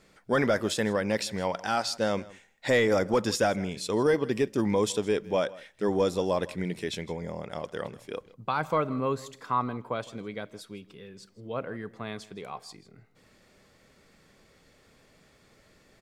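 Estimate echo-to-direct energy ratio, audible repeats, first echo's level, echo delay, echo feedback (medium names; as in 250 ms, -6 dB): -20.5 dB, 1, -20.5 dB, 160 ms, no regular repeats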